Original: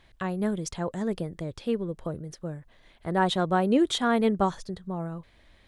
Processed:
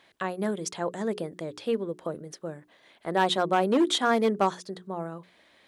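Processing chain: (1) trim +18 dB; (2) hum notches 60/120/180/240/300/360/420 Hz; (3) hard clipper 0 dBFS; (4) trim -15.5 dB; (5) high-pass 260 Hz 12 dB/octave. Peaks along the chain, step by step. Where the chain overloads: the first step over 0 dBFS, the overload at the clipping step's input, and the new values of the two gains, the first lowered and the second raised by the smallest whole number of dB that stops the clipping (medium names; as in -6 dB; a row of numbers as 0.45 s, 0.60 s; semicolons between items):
+6.0 dBFS, +6.0 dBFS, 0.0 dBFS, -15.5 dBFS, -10.0 dBFS; step 1, 6.0 dB; step 1 +12 dB, step 4 -9.5 dB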